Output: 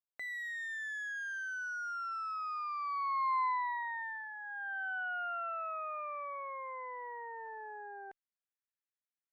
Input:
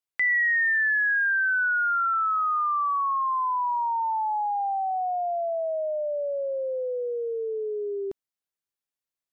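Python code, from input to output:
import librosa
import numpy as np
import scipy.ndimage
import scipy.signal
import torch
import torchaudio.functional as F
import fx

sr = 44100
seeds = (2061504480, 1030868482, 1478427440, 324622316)

y = fx.peak_eq(x, sr, hz=850.0, db=-10.5, octaves=0.25)
y = fx.cheby_harmonics(y, sr, harmonics=(3, 4, 5, 6), levels_db=(-21, -24, -39, -10), full_scale_db=-18.5)
y = fx.filter_sweep_bandpass(y, sr, from_hz=700.0, to_hz=1700.0, start_s=2.77, end_s=4.19, q=2.5)
y = y * 10.0 ** (-2.0 / 20.0)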